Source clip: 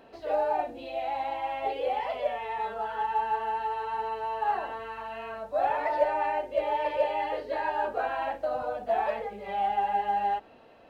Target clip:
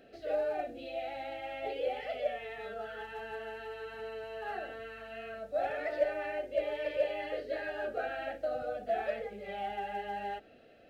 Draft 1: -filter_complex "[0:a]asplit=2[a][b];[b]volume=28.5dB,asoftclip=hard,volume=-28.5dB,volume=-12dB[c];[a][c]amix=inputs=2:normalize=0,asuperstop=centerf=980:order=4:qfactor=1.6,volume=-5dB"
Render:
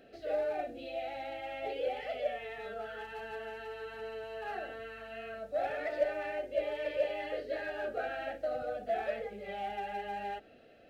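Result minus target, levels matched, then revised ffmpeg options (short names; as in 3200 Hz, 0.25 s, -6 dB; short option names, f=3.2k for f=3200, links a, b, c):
overloaded stage: distortion +13 dB
-filter_complex "[0:a]asplit=2[a][b];[b]volume=20dB,asoftclip=hard,volume=-20dB,volume=-12dB[c];[a][c]amix=inputs=2:normalize=0,asuperstop=centerf=980:order=4:qfactor=1.6,volume=-5dB"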